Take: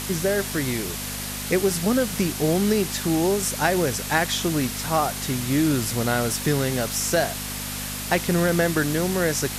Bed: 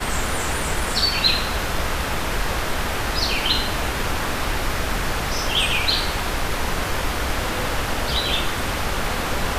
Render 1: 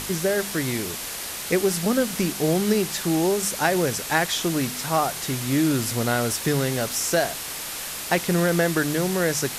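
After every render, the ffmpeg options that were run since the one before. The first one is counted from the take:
-af "bandreject=f=50:t=h:w=4,bandreject=f=100:t=h:w=4,bandreject=f=150:t=h:w=4,bandreject=f=200:t=h:w=4,bandreject=f=250:t=h:w=4"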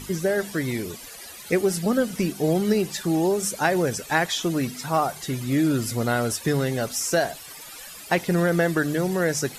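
-af "afftdn=nr=15:nf=-33"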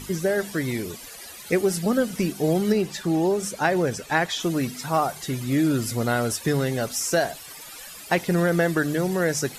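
-filter_complex "[0:a]asettb=1/sr,asplit=3[a][b][c];[a]atrim=end=2.724[d];[b]atrim=start=2.72:end=4.4,asetpts=PTS-STARTPTS,afade=t=in:d=0.004:c=qsin,afade=t=out:st=1.676:d=0.004:c=qsin,highshelf=f=6.7k:g=-8[e];[c]atrim=start=4.396[f];[d][e]acrossfade=d=0.004:c1=hsin:c2=qsin[g];[g][f]acrossfade=d=0.004:c1=qsin:c2=hsin"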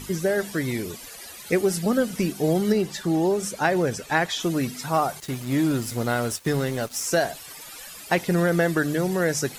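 -filter_complex "[0:a]asettb=1/sr,asplit=3[a][b][c];[a]atrim=end=2.524[d];[b]atrim=start=2.52:end=3.27,asetpts=PTS-STARTPTS,afade=t=in:d=0.004:c=qsin,afade=t=out:st=0.746:d=0.004:c=qsin,bandreject=f=2.5k:w=12[e];[c]atrim=start=3.266[f];[d][e]acrossfade=d=0.004:c1=hsin:c2=qsin[g];[g][f]acrossfade=d=0.004:c1=qsin:c2=hsin,asettb=1/sr,asplit=3[h][i][j];[h]atrim=end=5.204[k];[i]atrim=start=5.2:end=7.07,asetpts=PTS-STARTPTS,afade=t=in:d=0.004:c=qsin,afade=t=out:st=1.866:d=0.004:c=qsin,aeval=exprs='sgn(val(0))*max(abs(val(0))-0.0126,0)':c=same[l];[j]atrim=start=7.066[m];[k][l]acrossfade=d=0.004:c1=hsin:c2=qsin[n];[n][m]acrossfade=d=0.004:c1=qsin:c2=hsin"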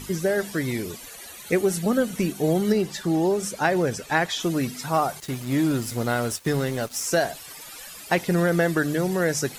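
-filter_complex "[0:a]asettb=1/sr,asplit=3[a][b][c];[a]atrim=end=0.994[d];[b]atrim=start=0.99:end=2.68,asetpts=PTS-STARTPTS,afade=t=in:d=0.004:c=qsin,afade=t=out:st=1.686:d=0.004:c=qsin,bandreject=f=5k:w=7.7[e];[c]atrim=start=2.676[f];[d][e]acrossfade=d=0.004:c1=hsin:c2=qsin[g];[g][f]acrossfade=d=0.004:c1=qsin:c2=hsin"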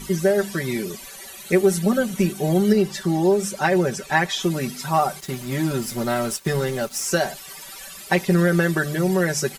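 -af "aecho=1:1:5.2:0.82"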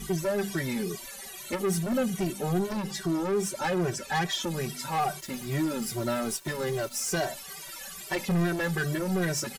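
-filter_complex "[0:a]asoftclip=type=tanh:threshold=-21dB,asplit=2[a][b];[b]adelay=2,afreqshift=-2.4[c];[a][c]amix=inputs=2:normalize=1"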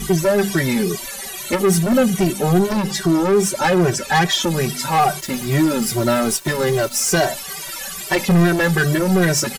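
-af "volume=12dB"

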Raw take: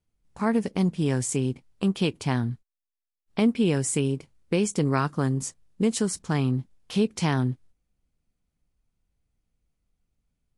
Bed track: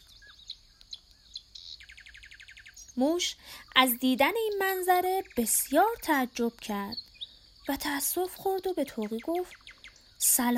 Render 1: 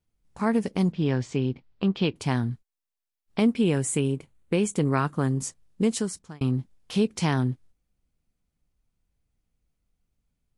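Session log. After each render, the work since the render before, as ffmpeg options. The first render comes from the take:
-filter_complex "[0:a]asettb=1/sr,asplit=3[a][b][c];[a]atrim=end=0.924[d];[b]atrim=start=0.92:end=2.16,asetpts=PTS-STARTPTS,afade=t=in:d=0.004:c=qsin,afade=t=out:st=1.236:d=0.004:c=qsin,lowpass=f=4.6k:w=0.5412,lowpass=f=4.6k:w=1.3066[e];[c]atrim=start=2.156[f];[d][e]acrossfade=d=0.004:c1=hsin:c2=qsin[g];[g][f]acrossfade=d=0.004:c1=qsin:c2=hsin,asettb=1/sr,asplit=3[h][i][j];[h]atrim=end=3.614[k];[i]atrim=start=3.61:end=5.29,asetpts=PTS-STARTPTS,afade=t=in:d=0.004:c=qsin,afade=t=out:st=1.676:d=0.004:c=qsin,equalizer=f=5.2k:t=o:w=0.47:g=-9[l];[j]atrim=start=5.286[m];[k][l]acrossfade=d=0.004:c1=hsin:c2=qsin[n];[n][m]acrossfade=d=0.004:c1=qsin:c2=hsin,asplit=2[o][p];[o]atrim=end=6.41,asetpts=PTS-STARTPTS,afade=t=out:st=5.89:d=0.52[q];[p]atrim=start=6.41,asetpts=PTS-STARTPTS,afade=t=in:d=0.004:c=hsin[r];[q][r]concat=n=2:v=0:a=1"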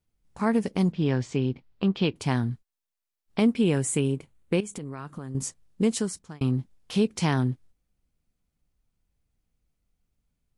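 -filter_complex "[0:a]asettb=1/sr,asplit=3[a][b][c];[a]atrim=end=4.604[d];[b]atrim=start=4.6:end=5.35,asetpts=PTS-STARTPTS,afade=t=in:d=0.004:c=qsin,afade=t=out:st=0.746:d=0.004:c=qsin,acompressor=threshold=-32dB:ratio=16:attack=3.2:release=140:knee=1:detection=peak[e];[c]atrim=start=5.346[f];[d][e]acrossfade=d=0.004:c1=hsin:c2=qsin[g];[g][f]acrossfade=d=0.004:c1=qsin:c2=hsin"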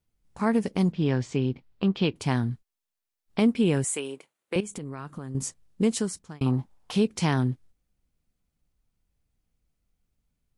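-filter_complex "[0:a]asettb=1/sr,asplit=3[a][b][c];[a]atrim=end=3.844[d];[b]atrim=start=3.84:end=4.56,asetpts=PTS-STARTPTS,afade=t=in:d=0.004:c=qsin,afade=t=out:st=0.716:d=0.004:c=qsin,highpass=520[e];[c]atrim=start=4.556[f];[d][e]acrossfade=d=0.004:c1=hsin:c2=qsin[g];[g][f]acrossfade=d=0.004:c1=qsin:c2=hsin,asettb=1/sr,asplit=3[h][i][j];[h]atrim=end=6.464[k];[i]atrim=start=6.46:end=6.92,asetpts=PTS-STARTPTS,afade=t=in:d=0.004:c=qsin,afade=t=out:st=0.456:d=0.004:c=qsin,equalizer=f=880:w=1.3:g=14[l];[j]atrim=start=6.916[m];[k][l]acrossfade=d=0.004:c1=hsin:c2=qsin[n];[n][m]acrossfade=d=0.004:c1=qsin:c2=hsin"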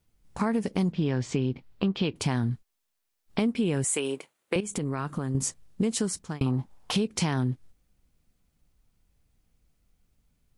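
-filter_complex "[0:a]asplit=2[a][b];[b]alimiter=limit=-20.5dB:level=0:latency=1:release=67,volume=2dB[c];[a][c]amix=inputs=2:normalize=0,acompressor=threshold=-24dB:ratio=4"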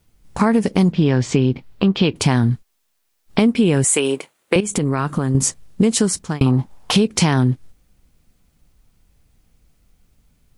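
-af "volume=11dB,alimiter=limit=-2dB:level=0:latency=1"

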